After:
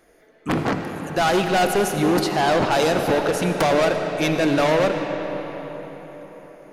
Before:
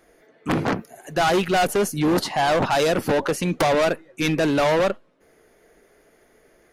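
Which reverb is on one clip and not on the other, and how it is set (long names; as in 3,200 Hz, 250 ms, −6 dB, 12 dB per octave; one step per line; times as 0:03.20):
comb and all-pass reverb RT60 4.8 s, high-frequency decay 0.65×, pre-delay 40 ms, DRR 4.5 dB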